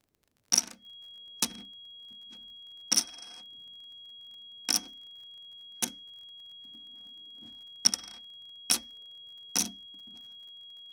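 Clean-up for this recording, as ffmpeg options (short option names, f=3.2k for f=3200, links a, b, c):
-af "adeclick=t=4,bandreject=f=3.3k:w=30"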